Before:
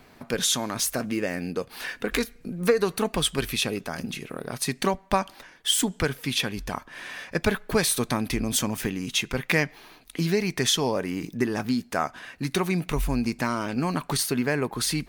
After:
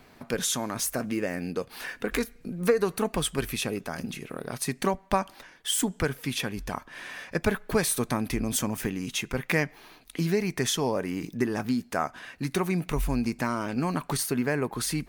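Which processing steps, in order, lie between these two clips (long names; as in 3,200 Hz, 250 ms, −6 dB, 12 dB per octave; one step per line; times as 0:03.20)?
dynamic equaliser 3,800 Hz, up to −6 dB, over −42 dBFS, Q 1.1
level −1.5 dB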